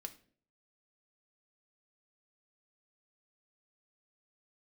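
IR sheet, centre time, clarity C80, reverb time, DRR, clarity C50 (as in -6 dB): 5 ms, 20.0 dB, 0.50 s, 6.5 dB, 15.0 dB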